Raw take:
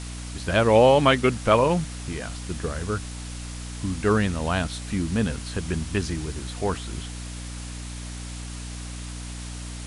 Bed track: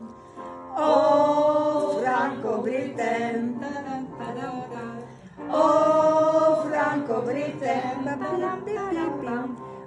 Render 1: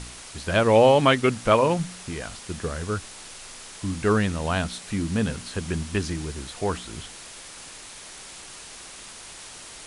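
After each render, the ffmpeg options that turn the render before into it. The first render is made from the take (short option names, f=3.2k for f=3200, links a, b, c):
-af "bandreject=f=60:t=h:w=4,bandreject=f=120:t=h:w=4,bandreject=f=180:t=h:w=4,bandreject=f=240:t=h:w=4,bandreject=f=300:t=h:w=4"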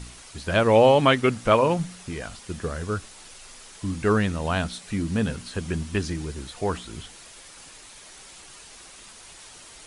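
-af "afftdn=nr=6:nf=-43"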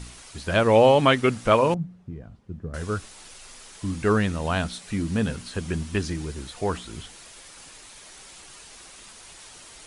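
-filter_complex "[0:a]asettb=1/sr,asplit=3[a][b][c];[a]atrim=end=1.744[d];[b]atrim=start=1.74:end=2.74,asetpts=PTS-STARTPTS,afade=t=in:d=0.004:c=qsin,afade=t=out:st=0.996:d=0.004:c=qsin,bandpass=f=120:t=q:w=0.88[e];[c]atrim=start=2.736[f];[d][e]acrossfade=d=0.004:c1=hsin:c2=qsin[g];[g][f]acrossfade=d=0.004:c1=qsin:c2=hsin"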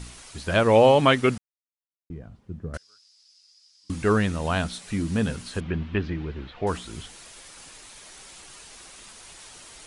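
-filter_complex "[0:a]asettb=1/sr,asplit=3[a][b][c];[a]atrim=end=2.774[d];[b]atrim=start=2.77:end=3.9,asetpts=PTS-STARTPTS,afade=t=in:d=0.004:c=qsin,afade=t=out:st=1.126:d=0.004:c=qsin,bandpass=f=5k:t=q:w=11[e];[c]atrim=start=3.896[f];[d][e]acrossfade=d=0.004:c1=hsin:c2=qsin[g];[g][f]acrossfade=d=0.004:c1=qsin:c2=hsin,asettb=1/sr,asplit=3[h][i][j];[h]atrim=end=5.604[k];[i]atrim=start=5.6:end=6.67,asetpts=PTS-STARTPTS,afade=t=in:d=0.004:c=qsin,afade=t=out:st=1.066:d=0.004:c=qsin,lowpass=f=3.2k:w=0.5412,lowpass=f=3.2k:w=1.3066[l];[j]atrim=start=6.666[m];[k][l]acrossfade=d=0.004:c1=hsin:c2=qsin[n];[n][m]acrossfade=d=0.004:c1=qsin:c2=hsin,asplit=3[o][p][q];[o]atrim=end=1.38,asetpts=PTS-STARTPTS,afade=t=out:st=1.376:d=0.004:c=hsin[r];[p]atrim=start=1.38:end=2.1,asetpts=PTS-STARTPTS,volume=0[s];[q]atrim=start=2.1,asetpts=PTS-STARTPTS,afade=t=in:d=0.004:c=hsin[t];[r][s][t]concat=n=3:v=0:a=1"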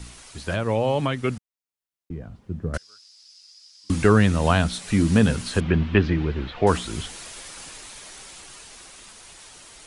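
-filter_complex "[0:a]acrossover=split=180[a][b];[b]alimiter=limit=-14.5dB:level=0:latency=1:release=487[c];[a][c]amix=inputs=2:normalize=0,dynaudnorm=f=270:g=17:m=8.5dB"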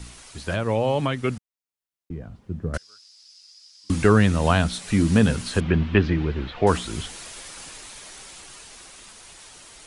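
-af anull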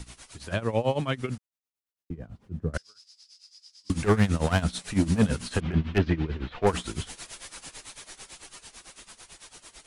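-af "asoftclip=type=hard:threshold=-13dB,tremolo=f=9:d=0.85"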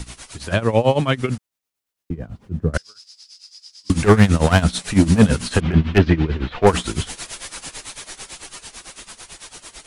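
-af "volume=9.5dB"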